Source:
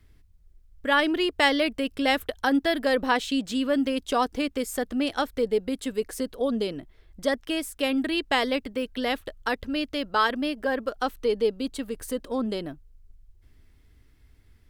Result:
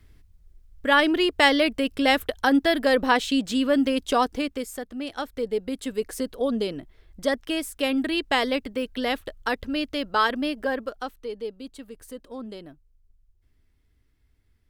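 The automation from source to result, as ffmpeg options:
ffmpeg -i in.wav -af "volume=12dB,afade=type=out:start_time=4.12:duration=0.76:silence=0.281838,afade=type=in:start_time=4.88:duration=1.25:silence=0.354813,afade=type=out:start_time=10.61:duration=0.55:silence=0.316228" out.wav

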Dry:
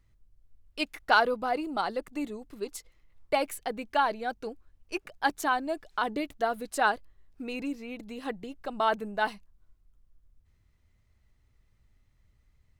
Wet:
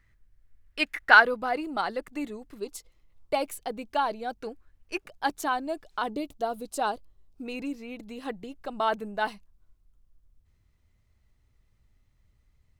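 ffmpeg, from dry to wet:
ffmpeg -i in.wav -af "asetnsamples=nb_out_samples=441:pad=0,asendcmd='1.22 equalizer g 4;2.58 equalizer g -6;4.38 equalizer g 5.5;5.01 equalizer g -3.5;6.1 equalizer g -13.5;7.46 equalizer g -1.5',equalizer=frequency=1800:width_type=o:width=0.83:gain=13.5" out.wav

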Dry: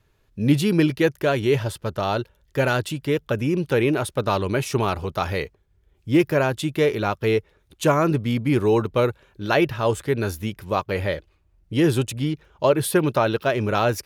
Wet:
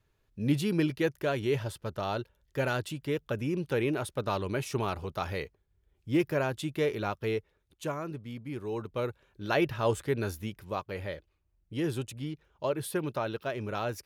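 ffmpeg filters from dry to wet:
ffmpeg -i in.wav -af "volume=3dB,afade=type=out:start_time=7.07:duration=0.99:silence=0.354813,afade=type=in:start_time=8.63:duration=1.26:silence=0.251189,afade=type=out:start_time=9.89:duration=1.02:silence=0.473151" out.wav

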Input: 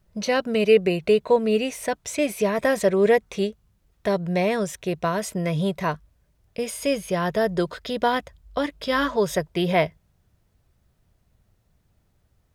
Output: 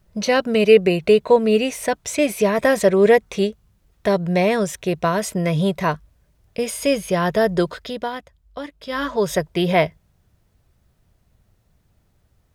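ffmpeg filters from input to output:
ffmpeg -i in.wav -af "volume=14.5dB,afade=type=out:start_time=7.62:duration=0.48:silence=0.281838,afade=type=in:start_time=8.84:duration=0.5:silence=0.316228" out.wav

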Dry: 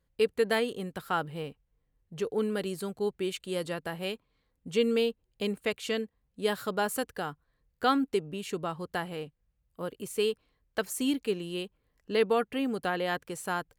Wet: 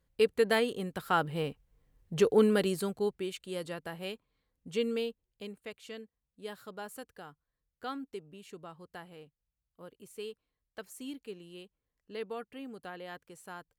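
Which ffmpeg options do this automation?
ffmpeg -i in.wav -af "volume=7.5dB,afade=type=in:start_time=0.94:duration=1.22:silence=0.421697,afade=type=out:start_time=2.16:duration=1.11:silence=0.237137,afade=type=out:start_time=4.79:duration=0.75:silence=0.375837" out.wav

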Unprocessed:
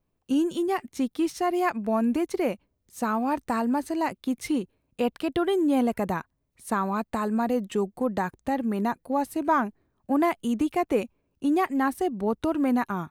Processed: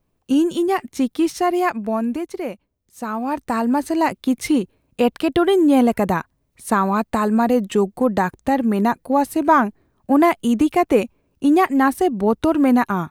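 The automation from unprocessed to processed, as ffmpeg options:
ffmpeg -i in.wav -af "volume=16.5dB,afade=type=out:start_time=1.43:duration=0.85:silence=0.398107,afade=type=in:start_time=3.01:duration=1:silence=0.334965" out.wav

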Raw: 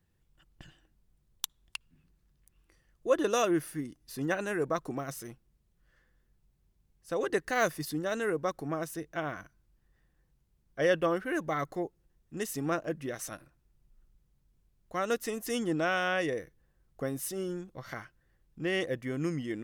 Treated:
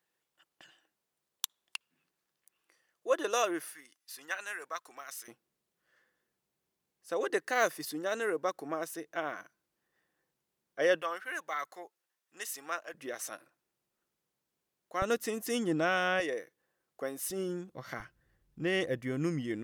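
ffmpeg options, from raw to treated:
ffmpeg -i in.wav -af "asetnsamples=nb_out_samples=441:pad=0,asendcmd='3.73 highpass f 1300;5.28 highpass f 350;11.02 highpass f 990;12.94 highpass f 400;15.02 highpass f 120;16.2 highpass f 400;17.3 highpass f 130;18 highpass f 46',highpass=520" out.wav

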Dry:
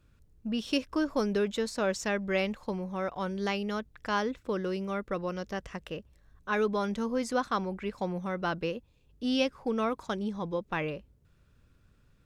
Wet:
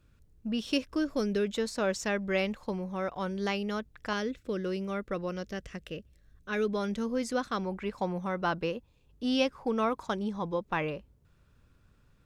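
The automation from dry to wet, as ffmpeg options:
ffmpeg -i in.wav -af "asetnsamples=nb_out_samples=441:pad=0,asendcmd='0.93 equalizer g -9.5;1.55 equalizer g -1;4.13 equalizer g -12;4.65 equalizer g -4;5.45 equalizer g -12;6.69 equalizer g -6;7.65 equalizer g 3.5',equalizer=frequency=940:width_type=o:width=0.84:gain=-1" out.wav

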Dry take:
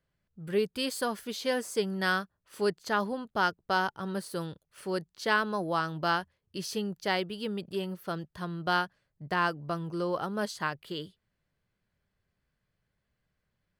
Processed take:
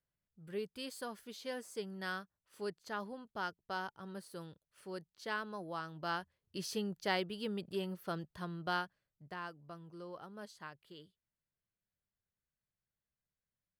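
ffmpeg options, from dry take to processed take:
ffmpeg -i in.wav -af "volume=-5dB,afade=type=in:start_time=5.95:duration=0.62:silence=0.421697,afade=type=out:start_time=8.25:duration=1.16:silence=0.251189" out.wav

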